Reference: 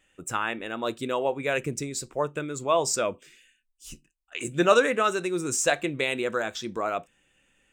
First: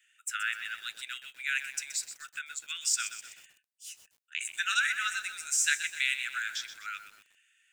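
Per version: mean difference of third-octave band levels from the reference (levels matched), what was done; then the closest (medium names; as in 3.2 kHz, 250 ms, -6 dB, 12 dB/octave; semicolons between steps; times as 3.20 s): 17.0 dB: steep high-pass 1.4 kHz 96 dB/octave; bit-crushed delay 126 ms, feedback 55%, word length 8-bit, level -10.5 dB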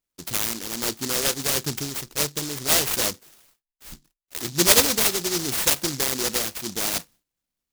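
12.5 dB: gate with hold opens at -51 dBFS; delay time shaken by noise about 5.3 kHz, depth 0.42 ms; trim +2.5 dB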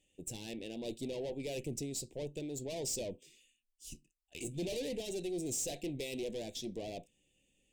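9.0 dB: valve stage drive 30 dB, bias 0.5; Butterworth band-stop 1.3 kHz, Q 0.53; trim -3 dB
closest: third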